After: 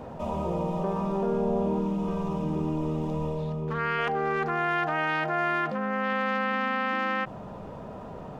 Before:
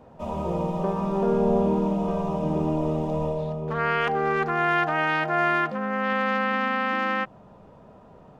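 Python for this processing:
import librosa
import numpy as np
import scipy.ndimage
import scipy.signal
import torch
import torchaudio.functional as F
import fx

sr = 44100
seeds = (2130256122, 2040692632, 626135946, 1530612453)

y = fx.peak_eq(x, sr, hz=660.0, db=-10.0, octaves=0.58, at=(1.81, 3.99))
y = fx.env_flatten(y, sr, amount_pct=50)
y = y * 10.0 ** (-5.5 / 20.0)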